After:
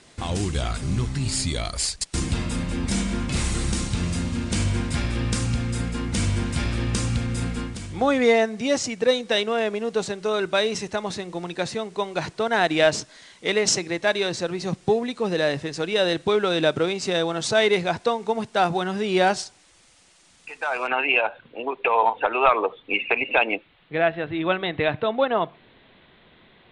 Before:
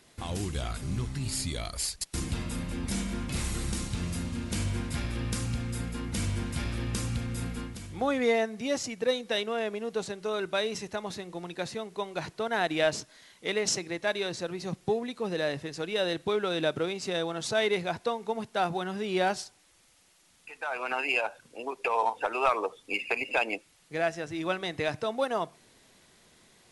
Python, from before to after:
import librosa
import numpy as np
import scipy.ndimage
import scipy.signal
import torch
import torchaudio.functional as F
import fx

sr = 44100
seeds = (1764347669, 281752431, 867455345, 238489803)

y = fx.steep_lowpass(x, sr, hz=fx.steps((0.0, 9700.0), (20.86, 3800.0)), slope=72)
y = y * 10.0 ** (7.5 / 20.0)